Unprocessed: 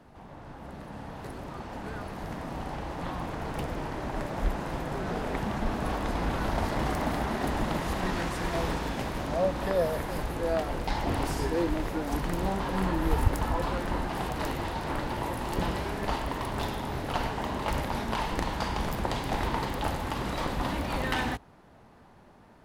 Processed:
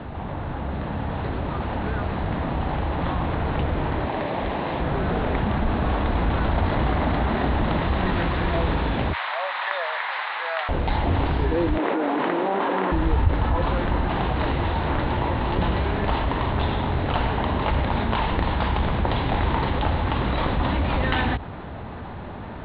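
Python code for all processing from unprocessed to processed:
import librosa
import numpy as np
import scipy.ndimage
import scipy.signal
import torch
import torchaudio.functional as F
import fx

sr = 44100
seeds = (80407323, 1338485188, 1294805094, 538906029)

y = fx.chain(x, sr, fx.highpass(hz=330.0, slope=6),
    fx.peak_eq(hz=1400.0, db=-7.0, octaves=0.39), at=(4.05, 4.8))
y = fx.chain(y, sr, fx.highpass(hz=910.0, slope=24),
    fx.peak_eq(hz=2000.0, db=4.5, octaves=0.41), at=(9.13, 10.69))
y = fx.chain(y, sr, fx.highpass(hz=280.0, slope=24),
    fx.air_absorb(metres=270.0),
    fx.env_flatten(amount_pct=100), at=(11.78, 12.92))
y = scipy.signal.sosfilt(scipy.signal.butter(12, 4000.0, 'lowpass', fs=sr, output='sos'), y)
y = fx.peak_eq(y, sr, hz=77.0, db=8.0, octaves=1.1)
y = fx.env_flatten(y, sr, amount_pct=50)
y = F.gain(torch.from_numpy(y), -1.5).numpy()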